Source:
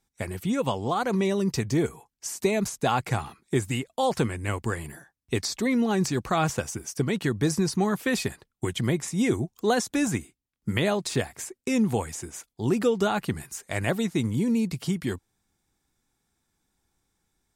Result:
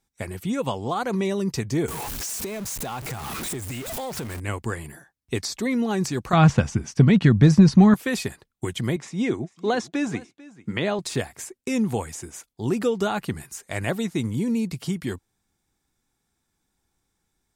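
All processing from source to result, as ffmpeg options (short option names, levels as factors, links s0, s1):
-filter_complex "[0:a]asettb=1/sr,asplit=3[s0][s1][s2];[s0]atrim=end=1.884[s3];[s1]atrim=start=1.88:end=4.4,asetpts=PTS-STARTPTS,afade=t=in:d=0.004:c=qsin,afade=t=out:st=2.516:d=0.004:c=qsin,aeval=exprs='val(0)+0.5*0.0531*sgn(val(0))':c=same,acompressor=threshold=0.0251:ratio=3:attack=3.2:release=140:knee=1:detection=peak,highshelf=f=12000:g=6[s4];[s2]atrim=start=4.396[s5];[s3][s4]acrossfade=d=0.004:c1=hsin:c2=qsin[s6];[s6][s5]acrossfade=d=0.004:c1=qsin:c2=hsin,asettb=1/sr,asplit=3[s7][s8][s9];[s7]atrim=end=6.334[s10];[s8]atrim=start=6.33:end=7.94,asetpts=PTS-STARTPTS,afade=t=in:d=0.004:c=qsin,afade=t=out:st=1.606:d=0.004:c=qsin,lowpass=4200,lowshelf=f=270:t=q:w=1.5:g=6.5,acontrast=47[s11];[s9]atrim=start=7.936[s12];[s10][s11]acrossfade=d=0.004:c1=hsin:c2=qsin[s13];[s13][s12]acrossfade=d=0.004:c1=qsin:c2=hsin,asettb=1/sr,asplit=3[s14][s15][s16];[s14]atrim=end=8.964[s17];[s15]atrim=start=8.96:end=10.99,asetpts=PTS-STARTPTS,afade=t=in:d=0.004:c=qsin,afade=t=out:st=2.026:d=0.004:c=qsin,highpass=140,lowpass=4700,aecho=1:1:444:0.0944,atrim=end_sample=89523[s18];[s16]atrim=start=10.986[s19];[s17][s18]acrossfade=d=0.004:c1=hsin:c2=qsin[s20];[s20][s19]acrossfade=d=0.004:c1=qsin:c2=hsin"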